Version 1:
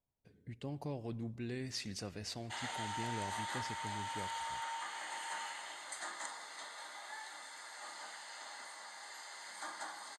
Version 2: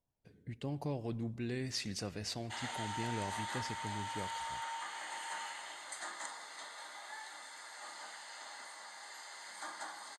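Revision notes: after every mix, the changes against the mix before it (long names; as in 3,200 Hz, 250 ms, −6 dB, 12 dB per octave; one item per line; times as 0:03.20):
reverb: on, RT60 0.35 s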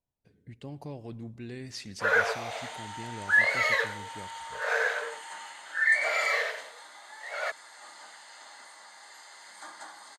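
speech: send −11.0 dB
first sound: unmuted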